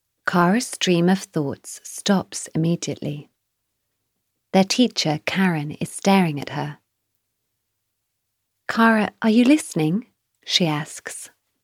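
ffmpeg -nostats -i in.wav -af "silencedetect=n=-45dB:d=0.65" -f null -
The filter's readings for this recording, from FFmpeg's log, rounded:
silence_start: 3.25
silence_end: 4.54 | silence_duration: 1.29
silence_start: 6.76
silence_end: 8.69 | silence_duration: 1.92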